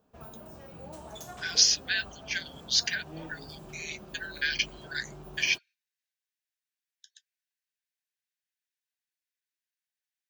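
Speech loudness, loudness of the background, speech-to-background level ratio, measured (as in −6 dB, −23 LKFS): −28.5 LKFS, −46.5 LKFS, 18.0 dB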